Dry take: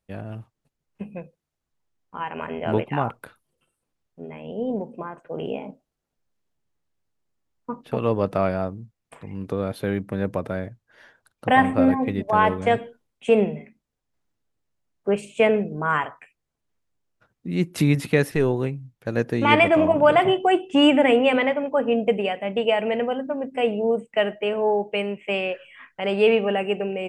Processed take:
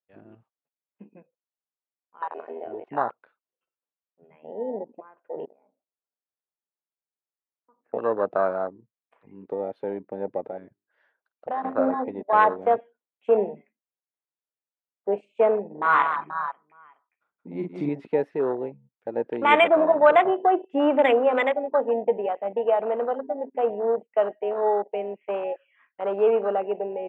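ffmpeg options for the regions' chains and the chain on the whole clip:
-filter_complex "[0:a]asettb=1/sr,asplit=3[a][b][c];[a]atrim=end=2.344[d];[b]atrim=start=2.34:end=2.89,asetpts=PTS-STARTPTS,afade=t=in:d=0.004:c=qsin,afade=t=out:st=0.546:d=0.004:c=qsin,aeval=exprs='val(0)*gte(abs(val(0)),0.00447)':c=same,aecho=1:1:2.7:0.55,atrim=end_sample=24255,acompressor=threshold=-27dB:ratio=6:attack=3.2:release=140:knee=1:detection=peak[e];[c]atrim=start=2.886[f];[d][e]acrossfade=d=0.004:c1=hsin:c2=qsin[g];[g][f]acrossfade=d=0.004:c1=qsin:c2=hsin,asettb=1/sr,asplit=3[h][i][j];[h]atrim=end=5.454[k];[i]atrim=start=5.45:end=7.94,asetpts=PTS-STARTPTS,afade=t=in:d=0.004:c=qsin,afade=t=out:st=2.486:d=0.004:c=qsin,acompressor=threshold=-46dB:ratio=3:attack=3.2:release=140:knee=1:detection=peak,asuperstop=centerf=4400:order=8:qfactor=0.64[l];[j]atrim=start=7.936[m];[k][l]acrossfade=d=0.004:c1=hsin:c2=qsin[n];[n][m]acrossfade=d=0.004:c1=qsin:c2=hsin,asettb=1/sr,asplit=3[o][p][q];[o]atrim=end=10.484[r];[p]atrim=start=10.48:end=11.65,asetpts=PTS-STARTPTS,afade=t=in:d=0.004:c=qsin,afade=t=out:st=1.166:d=0.004:c=qsin,volume=9dB,asoftclip=hard,volume=-9dB,bandreject=f=50:t=h:w=6,bandreject=f=100:t=h:w=6,bandreject=f=150:t=h:w=6,bandreject=f=200:t=h:w=6,bandreject=f=250:t=h:w=6,bandreject=f=300:t=h:w=6,bandreject=f=350:t=h:w=6,bandreject=f=400:t=h:w=6,acompressor=threshold=-24dB:ratio=6:attack=3.2:release=140:knee=1:detection=peak[s];[q]atrim=start=11.646[t];[r][s]acrossfade=d=0.004:c1=hsin:c2=qsin[u];[u][t]acrossfade=d=0.004:c1=qsin:c2=hsin,asettb=1/sr,asplit=3[v][w][x];[v]atrim=end=15.664[y];[w]atrim=start=15.66:end=17.89,asetpts=PTS-STARTPTS,afade=t=in:d=0.004:c=qsin,afade=t=out:st=2.226:d=0.004:c=qsin,aecho=1:1:0.9:0.44,atrim=end_sample=98343,aecho=1:1:42|177|225|482|900:0.596|0.473|0.133|0.422|0.168,atrim=end_sample=98343[z];[x]atrim=start=17.886[aa];[y][z]acrossfade=d=0.004:c1=hsin:c2=qsin[ab];[ab][aa]acrossfade=d=0.004:c1=qsin:c2=hsin,lowpass=2.4k,afwtdn=0.0562,highpass=460,volume=1.5dB"

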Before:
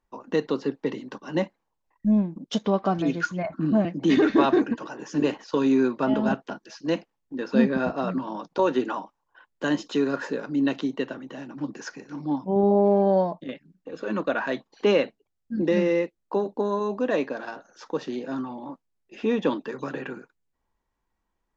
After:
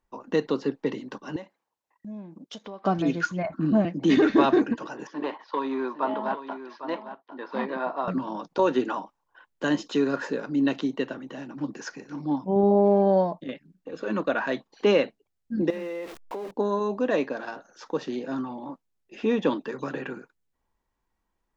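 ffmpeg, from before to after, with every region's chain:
-filter_complex "[0:a]asettb=1/sr,asplit=3[a][b][c];[a]atrim=end=1.364[d];[b]atrim=start=1.36:end=2.85,asetpts=PTS-STARTPTS,afade=t=in:d=0.004:c=qsin,afade=t=out:st=1.486:d=0.004:c=qsin,highpass=f=400:p=1,acompressor=threshold=-40dB:ratio=3:attack=3.2:release=140:knee=1:detection=peak[e];[c]atrim=start=2.846[f];[d][e]acrossfade=d=0.004:c1=hsin:c2=qsin[g];[g][f]acrossfade=d=0.004:c1=qsin:c2=hsin,asettb=1/sr,asplit=3[h][i][j];[h]atrim=end=5.074[k];[i]atrim=start=5.07:end=8.08,asetpts=PTS-STARTPTS,afade=t=in:d=0.004:c=qsin,afade=t=out:st=3.006:d=0.004:c=qsin,aeval=exprs='clip(val(0),-1,0.168)':c=same,highpass=470,equalizer=f=480:t=q:w=4:g=-5,equalizer=f=1k:t=q:w=4:g=8,equalizer=f=1.5k:t=q:w=4:g=-5,equalizer=f=2.7k:t=q:w=4:g=-9,lowpass=f=3.6k:w=0.5412,lowpass=f=3.6k:w=1.3066,aecho=1:1:803:0.266,atrim=end_sample=132741[l];[j]atrim=start=8.076[m];[k][l]acrossfade=d=0.004:c1=hsin:c2=qsin[n];[n][m]acrossfade=d=0.004:c1=qsin:c2=hsin,asettb=1/sr,asplit=3[o][p][q];[o]atrim=end=15.704[r];[p]atrim=start=15.7:end=16.51,asetpts=PTS-STARTPTS,afade=t=in:d=0.004:c=qsin,afade=t=out:st=0.806:d=0.004:c=qsin,aeval=exprs='val(0)+0.5*0.0237*sgn(val(0))':c=same,bass=f=250:g=-11,treble=f=4k:g=-5,acompressor=threshold=-31dB:ratio=5:attack=3.2:release=140:knee=1:detection=peak[s];[q]atrim=start=16.506[t];[r][s]acrossfade=d=0.004:c1=hsin:c2=qsin[u];[u][t]acrossfade=d=0.004:c1=qsin:c2=hsin"

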